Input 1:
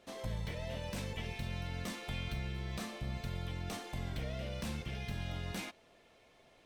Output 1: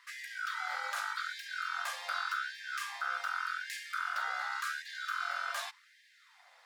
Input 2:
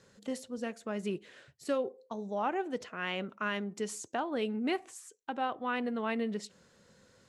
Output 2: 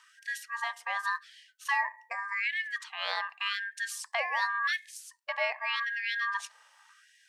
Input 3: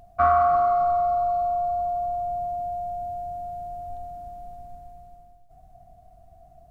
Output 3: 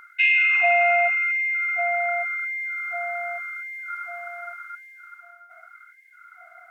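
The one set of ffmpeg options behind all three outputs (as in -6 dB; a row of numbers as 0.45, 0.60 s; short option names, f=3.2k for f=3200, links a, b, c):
-af "aeval=exprs='val(0)*sin(2*PI*1400*n/s)':c=same,afftfilt=real='re*gte(b*sr/1024,460*pow(1600/460,0.5+0.5*sin(2*PI*0.87*pts/sr)))':imag='im*gte(b*sr/1024,460*pow(1600/460,0.5+0.5*sin(2*PI*0.87*pts/sr)))':win_size=1024:overlap=0.75,volume=6dB"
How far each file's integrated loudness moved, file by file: +4.5, +3.5, +3.5 LU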